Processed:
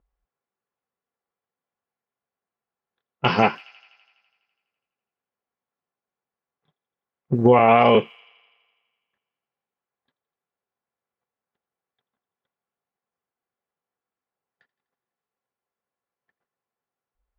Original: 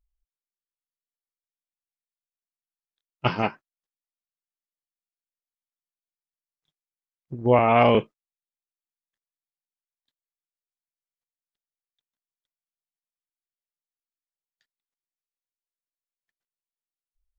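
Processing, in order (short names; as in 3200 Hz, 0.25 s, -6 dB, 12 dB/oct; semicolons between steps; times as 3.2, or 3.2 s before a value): notch comb 310 Hz; compressor 8:1, threshold -29 dBFS, peak gain reduction 15 dB; HPF 220 Hz 6 dB/oct; low-pass opened by the level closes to 1200 Hz, open at -37 dBFS; thin delay 83 ms, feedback 71%, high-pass 2600 Hz, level -18 dB; maximiser +21.5 dB; gain -2.5 dB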